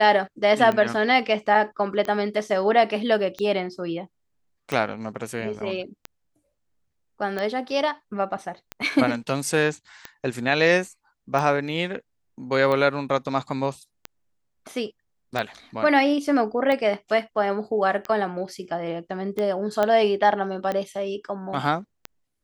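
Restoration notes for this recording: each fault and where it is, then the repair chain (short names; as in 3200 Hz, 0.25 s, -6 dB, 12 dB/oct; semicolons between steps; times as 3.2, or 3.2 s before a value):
tick 45 rpm -15 dBFS
19.83 pop -10 dBFS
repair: de-click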